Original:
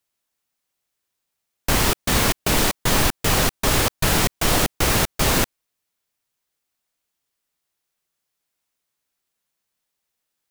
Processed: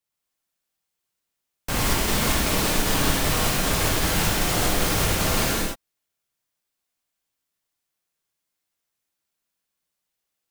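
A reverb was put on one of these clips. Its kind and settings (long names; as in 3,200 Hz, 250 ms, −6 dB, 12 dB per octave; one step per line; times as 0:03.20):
reverb whose tail is shaped and stops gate 320 ms flat, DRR −5 dB
level −8.5 dB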